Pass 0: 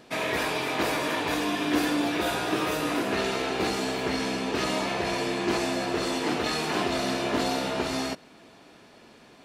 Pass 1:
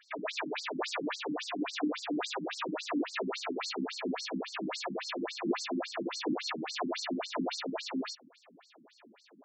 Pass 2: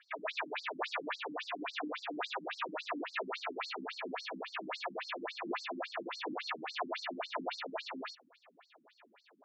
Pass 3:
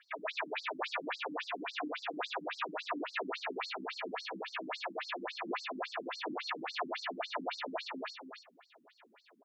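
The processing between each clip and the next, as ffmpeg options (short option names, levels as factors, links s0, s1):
-af "afftfilt=real='re*between(b*sr/1024,220*pow(6000/220,0.5+0.5*sin(2*PI*3.6*pts/sr))/1.41,220*pow(6000/220,0.5+0.5*sin(2*PI*3.6*pts/sr))*1.41)':imag='im*between(b*sr/1024,220*pow(6000/220,0.5+0.5*sin(2*PI*3.6*pts/sr))/1.41,220*pow(6000/220,0.5+0.5*sin(2*PI*3.6*pts/sr))*1.41)':win_size=1024:overlap=0.75"
-filter_complex "[0:a]acrossover=split=500 4000:gain=0.2 1 0.0708[s0][s1][s2];[s0][s1][s2]amix=inputs=3:normalize=0"
-af "aecho=1:1:283:0.447"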